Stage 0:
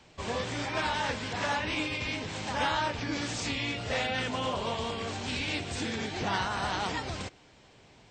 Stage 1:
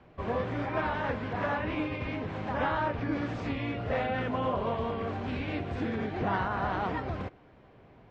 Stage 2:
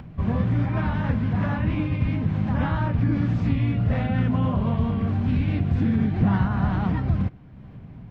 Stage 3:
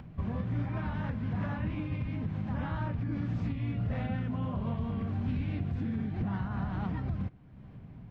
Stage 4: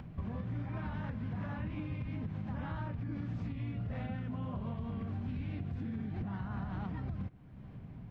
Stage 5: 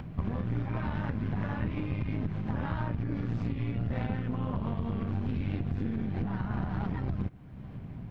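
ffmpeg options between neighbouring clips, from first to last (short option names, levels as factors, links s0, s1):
-af "lowpass=1400,bandreject=f=880:w=12,volume=1.41"
-af "lowshelf=f=280:t=q:w=1.5:g=13.5,acompressor=mode=upward:threshold=0.0178:ratio=2.5"
-af "alimiter=limit=0.133:level=0:latency=1:release=343,volume=0.473"
-af "acompressor=threshold=0.0178:ratio=6"
-af "aeval=exprs='0.0422*(cos(1*acos(clip(val(0)/0.0422,-1,1)))-cos(1*PI/2))+0.0168*(cos(2*acos(clip(val(0)/0.0422,-1,1)))-cos(2*PI/2))':c=same,volume=2"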